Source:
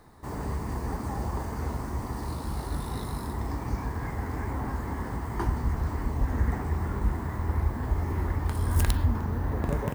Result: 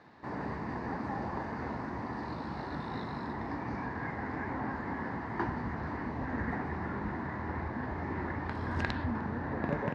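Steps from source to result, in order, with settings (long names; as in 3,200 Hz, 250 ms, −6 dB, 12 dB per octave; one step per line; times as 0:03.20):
bit-depth reduction 10 bits, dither none
loudspeaker in its box 170–4,000 Hz, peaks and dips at 420 Hz −4 dB, 1,200 Hz −3 dB, 1,700 Hz +5 dB, 3,200 Hz −7 dB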